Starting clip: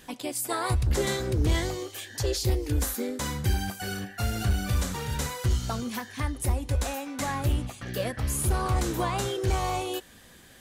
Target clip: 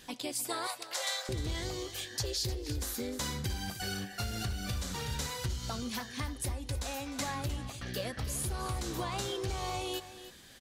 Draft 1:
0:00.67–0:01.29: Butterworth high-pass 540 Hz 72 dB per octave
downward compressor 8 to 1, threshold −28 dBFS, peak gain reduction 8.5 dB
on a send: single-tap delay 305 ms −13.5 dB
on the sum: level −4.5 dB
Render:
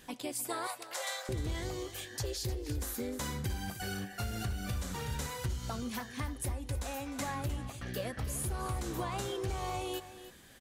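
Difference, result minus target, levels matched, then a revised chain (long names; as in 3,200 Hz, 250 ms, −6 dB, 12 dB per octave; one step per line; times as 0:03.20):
4,000 Hz band −4.0 dB
0:00.67–0:01.29: Butterworth high-pass 540 Hz 72 dB per octave
downward compressor 8 to 1, threshold −28 dBFS, peak gain reduction 8.5 dB
parametric band 4,500 Hz +7 dB 1.3 octaves
on a send: single-tap delay 305 ms −13.5 dB
on the sum: level −4.5 dB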